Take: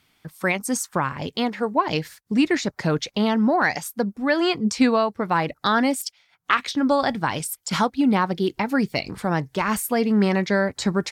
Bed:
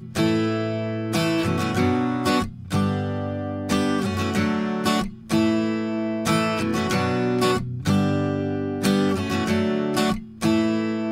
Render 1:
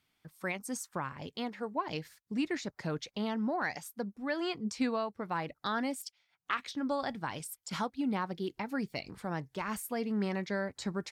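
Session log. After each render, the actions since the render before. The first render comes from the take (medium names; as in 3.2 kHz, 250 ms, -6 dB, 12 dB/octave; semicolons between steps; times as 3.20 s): trim -13.5 dB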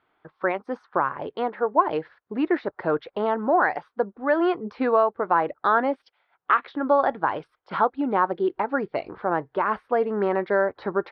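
inverse Chebyshev low-pass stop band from 6.8 kHz, stop band 40 dB; high-order bell 720 Hz +15 dB 2.7 oct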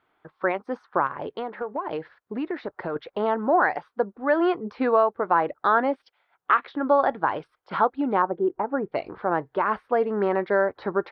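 1.06–2.96 s: compression, threshold -25 dBFS; 8.22–8.92 s: low-pass 1.1 kHz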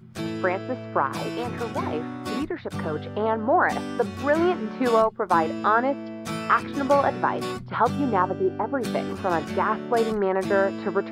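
add bed -10 dB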